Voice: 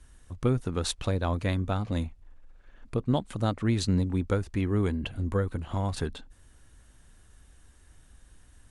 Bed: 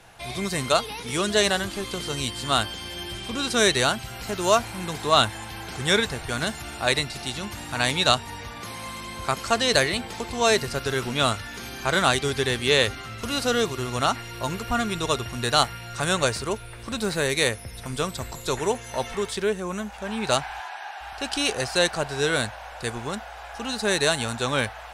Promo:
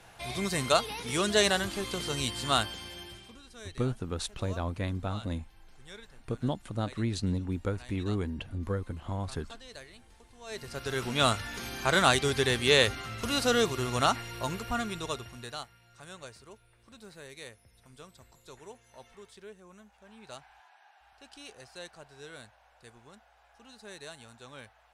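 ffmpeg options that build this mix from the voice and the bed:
ffmpeg -i stem1.wav -i stem2.wav -filter_complex "[0:a]adelay=3350,volume=-5dB[link_01];[1:a]volume=21.5dB,afade=type=out:start_time=2.48:duration=0.92:silence=0.0630957,afade=type=in:start_time=10.46:duration=0.82:silence=0.0562341,afade=type=out:start_time=14.03:duration=1.62:silence=0.0891251[link_02];[link_01][link_02]amix=inputs=2:normalize=0" out.wav

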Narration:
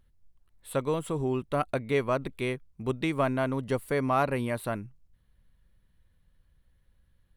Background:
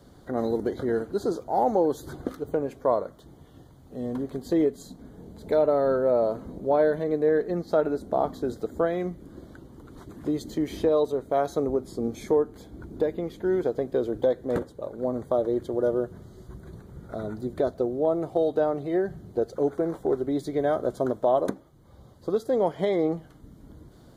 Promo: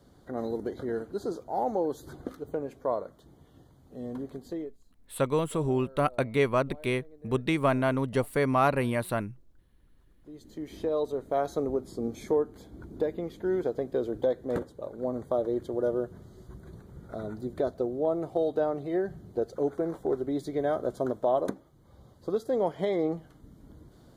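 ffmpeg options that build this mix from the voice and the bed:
ffmpeg -i stem1.wav -i stem2.wav -filter_complex "[0:a]adelay=4450,volume=2dB[link_01];[1:a]volume=18.5dB,afade=type=out:start_time=4.28:duration=0.5:silence=0.0794328,afade=type=in:start_time=10.21:duration=1.06:silence=0.0595662[link_02];[link_01][link_02]amix=inputs=2:normalize=0" out.wav

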